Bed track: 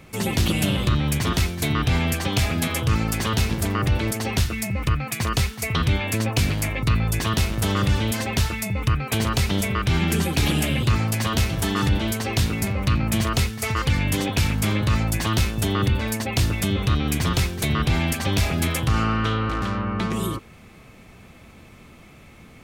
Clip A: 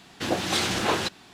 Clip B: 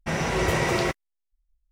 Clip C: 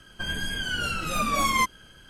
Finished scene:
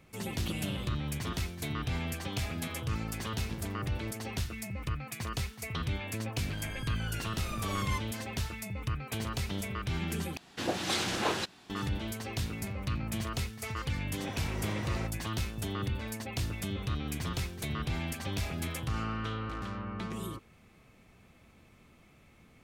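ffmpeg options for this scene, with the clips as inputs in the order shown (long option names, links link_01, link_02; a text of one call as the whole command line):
ffmpeg -i bed.wav -i cue0.wav -i cue1.wav -i cue2.wav -filter_complex "[0:a]volume=-13dB,asplit=2[link_01][link_02];[link_01]atrim=end=10.374[link_03];[1:a]atrim=end=1.33,asetpts=PTS-STARTPTS,volume=-6dB[link_04];[link_02]atrim=start=11.696[link_05];[3:a]atrim=end=2.09,asetpts=PTS-STARTPTS,volume=-14.5dB,afade=type=in:duration=0.004:curve=hsin,afade=type=out:start_time=2.086:duration=0.004:curve=hsin,adelay=6330[link_06];[2:a]atrim=end=1.71,asetpts=PTS-STARTPTS,volume=-17dB,afade=type=in:duration=0.004:curve=hsin,afade=type=out:start_time=1.706:duration=0.004:curve=hsin,adelay=14160[link_07];[link_03][link_04]acrossfade=duration=0.004:curve1=hsin:curve2=hsin[link_08];[link_08][link_05]acrossfade=duration=0.004:curve1=hsin:curve2=hsin[link_09];[link_09][link_06][link_07]amix=inputs=3:normalize=0" out.wav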